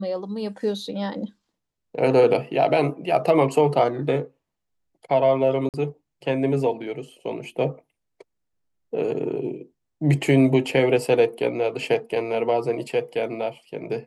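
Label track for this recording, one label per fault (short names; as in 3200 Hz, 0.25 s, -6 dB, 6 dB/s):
5.690000	5.740000	gap 48 ms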